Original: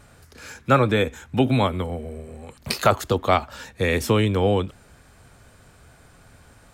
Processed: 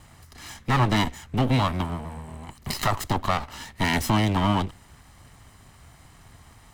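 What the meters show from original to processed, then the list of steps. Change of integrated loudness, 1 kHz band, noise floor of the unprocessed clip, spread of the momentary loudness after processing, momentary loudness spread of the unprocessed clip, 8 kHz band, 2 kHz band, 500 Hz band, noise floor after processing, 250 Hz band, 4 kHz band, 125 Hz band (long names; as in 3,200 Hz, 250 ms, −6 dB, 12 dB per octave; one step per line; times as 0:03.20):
−3.0 dB, −1.5 dB, −53 dBFS, 17 LU, 18 LU, 0.0 dB, −1.5 dB, −10.0 dB, −53 dBFS, −1.5 dB, −0.5 dB, −0.5 dB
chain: lower of the sound and its delayed copy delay 1 ms
brickwall limiter −14 dBFS, peak gain reduction 8 dB
level +1.5 dB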